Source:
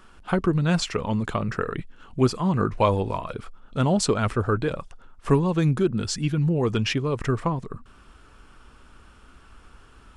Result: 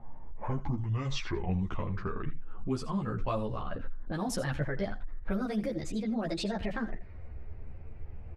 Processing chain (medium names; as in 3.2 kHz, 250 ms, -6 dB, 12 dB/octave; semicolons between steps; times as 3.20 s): gliding tape speed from 63% -> 180%; level-controlled noise filter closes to 890 Hz, open at -17 dBFS; bass shelf 100 Hz +11.5 dB; in parallel at -1 dB: peak limiter -17 dBFS, peak gain reduction 11 dB; on the sum: compression 2:1, threshold -31 dBFS, peak gain reduction 11.5 dB; on a send: delay 81 ms -15 dB; on the sum: three-phase chorus; trim -3 dB